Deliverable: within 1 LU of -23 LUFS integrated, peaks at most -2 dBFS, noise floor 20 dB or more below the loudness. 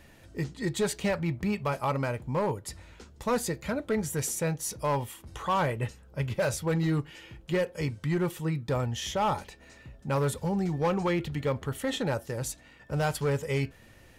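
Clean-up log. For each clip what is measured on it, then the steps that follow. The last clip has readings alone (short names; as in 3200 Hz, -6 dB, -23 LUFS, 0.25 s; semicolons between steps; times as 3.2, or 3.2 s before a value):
clipped 1.2%; flat tops at -21.0 dBFS; loudness -30.5 LUFS; peak -21.0 dBFS; loudness target -23.0 LUFS
-> clip repair -21 dBFS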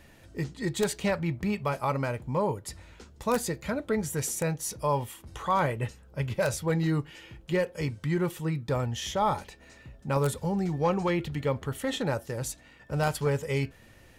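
clipped 0.0%; loudness -30.0 LUFS; peak -12.0 dBFS; loudness target -23.0 LUFS
-> gain +7 dB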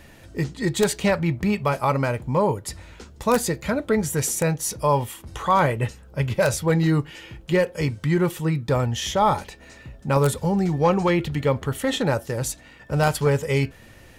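loudness -23.0 LUFS; peak -5.0 dBFS; noise floor -48 dBFS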